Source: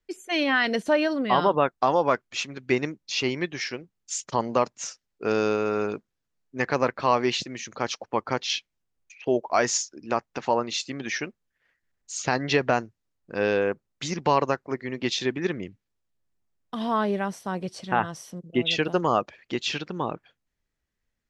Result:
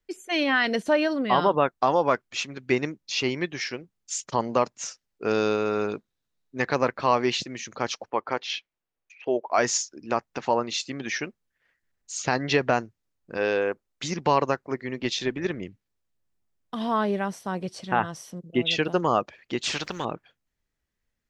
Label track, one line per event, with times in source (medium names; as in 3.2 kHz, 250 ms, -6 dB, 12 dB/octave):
5.330000	6.750000	peaking EQ 3.8 kHz +8.5 dB 0.21 oct
8.100000	9.580000	tone controls bass -11 dB, treble -10 dB
13.370000	14.040000	peaking EQ 140 Hz -14 dB 1 oct
14.980000	15.620000	AM modulator 230 Hz, depth 15%
19.630000	20.050000	spectrum-flattening compressor 2:1